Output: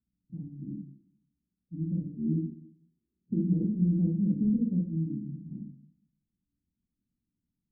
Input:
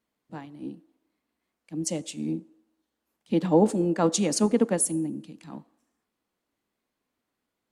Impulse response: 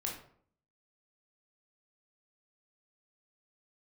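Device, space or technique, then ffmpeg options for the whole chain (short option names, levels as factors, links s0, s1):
club heard from the street: -filter_complex "[0:a]asettb=1/sr,asplit=3[s0][s1][s2];[s0]atrim=end=2.044[s3];[s1]atrim=start=2.04:end=3.6,asetpts=PTS-STARTPTS,afade=t=in:d=0.004:c=qsin,afade=t=out:st=1.556:d=0.004:c=qsin,equalizer=f=380:w=3.5:g=14.5[s4];[s2]atrim=start=3.596[s5];[s3][s4]acrossfade=d=0.004:c1=hsin:c2=qsin[s6];[s6][s5]acrossfade=d=0.004:c1=qsin:c2=hsin,alimiter=limit=0.178:level=0:latency=1:release=307,lowpass=f=200:w=0.5412,lowpass=f=200:w=1.3066[s7];[1:a]atrim=start_sample=2205[s8];[s7][s8]afir=irnorm=-1:irlink=0,volume=1.88"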